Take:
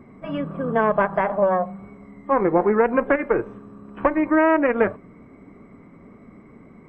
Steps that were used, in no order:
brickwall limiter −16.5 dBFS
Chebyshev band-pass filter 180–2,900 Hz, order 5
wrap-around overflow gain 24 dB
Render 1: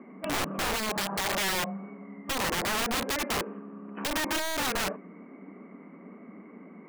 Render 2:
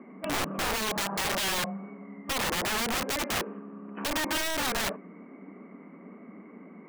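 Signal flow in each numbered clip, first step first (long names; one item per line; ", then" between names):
brickwall limiter, then Chebyshev band-pass filter, then wrap-around overflow
Chebyshev band-pass filter, then brickwall limiter, then wrap-around overflow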